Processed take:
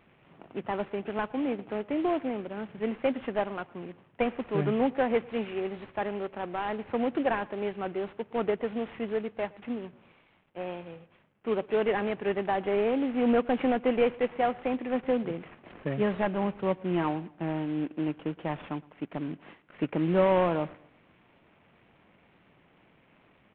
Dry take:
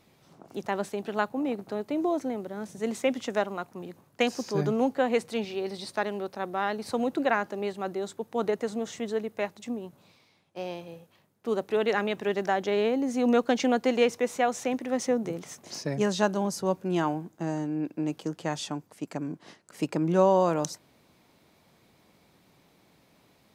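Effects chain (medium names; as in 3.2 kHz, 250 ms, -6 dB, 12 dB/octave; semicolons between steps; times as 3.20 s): CVSD coder 16 kbps; feedback delay 115 ms, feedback 40%, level -23 dB; wow and flutter 24 cents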